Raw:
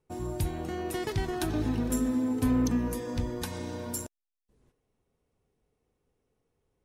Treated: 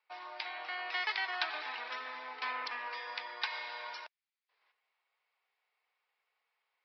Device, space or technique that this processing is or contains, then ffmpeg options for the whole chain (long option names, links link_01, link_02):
musical greeting card: -af "aresample=11025,aresample=44100,highpass=frequency=880:width=0.5412,highpass=frequency=880:width=1.3066,equalizer=frequency=2200:width_type=o:width=0.47:gain=7.5,volume=4dB"